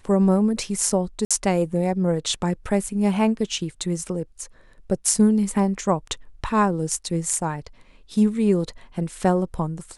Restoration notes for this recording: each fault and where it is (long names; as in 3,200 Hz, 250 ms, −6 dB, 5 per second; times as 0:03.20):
0:01.25–0:01.31: drop-out 56 ms